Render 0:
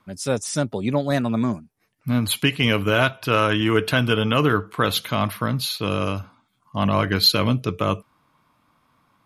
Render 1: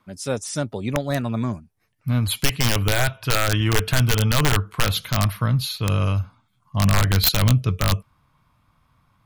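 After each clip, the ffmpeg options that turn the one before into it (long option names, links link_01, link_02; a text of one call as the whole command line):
ffmpeg -i in.wav -af "aeval=exprs='(mod(2.82*val(0)+1,2)-1)/2.82':channel_layout=same,asubboost=boost=7:cutoff=110,volume=-2dB" out.wav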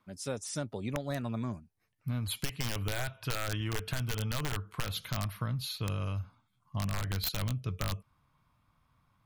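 ffmpeg -i in.wav -af "acompressor=threshold=-22dB:ratio=6,volume=-8.5dB" out.wav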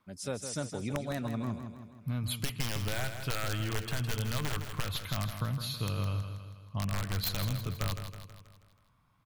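ffmpeg -i in.wav -af "aecho=1:1:161|322|483|644|805|966:0.376|0.195|0.102|0.0528|0.0275|0.0143" out.wav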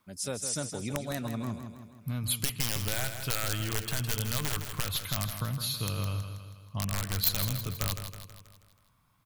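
ffmpeg -i in.wav -af "highshelf=frequency=5100:gain=11" out.wav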